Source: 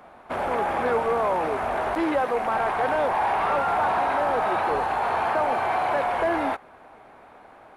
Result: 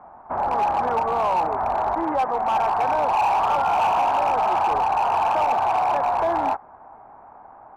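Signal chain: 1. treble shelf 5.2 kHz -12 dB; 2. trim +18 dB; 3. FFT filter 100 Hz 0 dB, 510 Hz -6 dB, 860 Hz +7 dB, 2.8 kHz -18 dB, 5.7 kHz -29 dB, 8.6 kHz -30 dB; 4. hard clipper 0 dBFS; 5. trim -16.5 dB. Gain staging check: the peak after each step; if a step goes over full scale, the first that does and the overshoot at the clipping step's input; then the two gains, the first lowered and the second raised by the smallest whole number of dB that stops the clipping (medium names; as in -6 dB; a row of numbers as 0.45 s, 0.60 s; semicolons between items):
-14.0 dBFS, +4.0 dBFS, +7.0 dBFS, 0.0 dBFS, -16.5 dBFS; step 2, 7.0 dB; step 2 +11 dB, step 5 -9.5 dB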